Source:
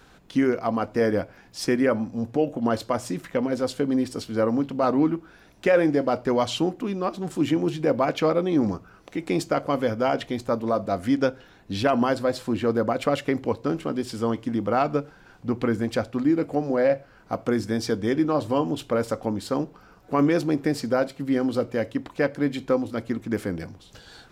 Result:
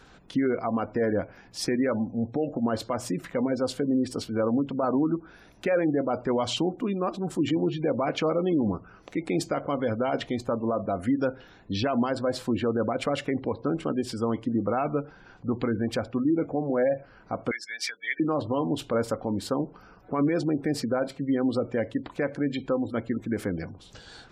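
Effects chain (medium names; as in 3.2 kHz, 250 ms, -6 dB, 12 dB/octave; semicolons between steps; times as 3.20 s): spectral gate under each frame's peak -30 dB strong; peak limiter -17 dBFS, peak gain reduction 7.5 dB; 17.51–18.20 s: resonant high-pass 2.1 kHz, resonance Q 7.4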